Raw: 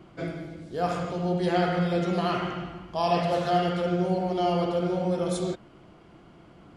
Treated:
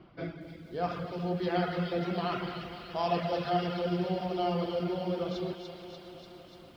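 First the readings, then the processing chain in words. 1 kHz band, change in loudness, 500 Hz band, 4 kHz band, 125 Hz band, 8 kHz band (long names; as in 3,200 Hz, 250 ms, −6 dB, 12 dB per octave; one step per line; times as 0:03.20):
−5.5 dB, −5.5 dB, −5.5 dB, −3.5 dB, −6.0 dB, below −15 dB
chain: on a send: delay with a high-pass on its return 293 ms, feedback 73%, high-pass 2,300 Hz, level −4.5 dB
on the sum: reverb reduction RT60 0.61 s
Butterworth low-pass 5,300 Hz 48 dB per octave
feedback echo at a low word length 237 ms, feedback 80%, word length 9 bits, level −14 dB
level −4.5 dB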